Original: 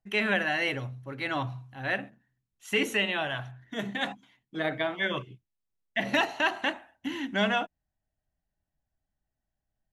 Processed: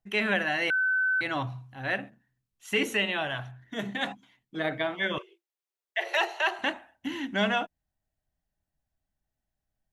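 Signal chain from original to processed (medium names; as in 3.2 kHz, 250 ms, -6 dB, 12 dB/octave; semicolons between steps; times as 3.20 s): 0.70–1.21 s: bleep 1.52 kHz -22.5 dBFS; 5.18–6.59 s: Chebyshev high-pass 340 Hz, order 10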